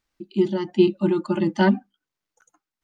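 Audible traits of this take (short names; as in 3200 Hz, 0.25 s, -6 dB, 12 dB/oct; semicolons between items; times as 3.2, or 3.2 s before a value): tremolo triangle 1.4 Hz, depth 45%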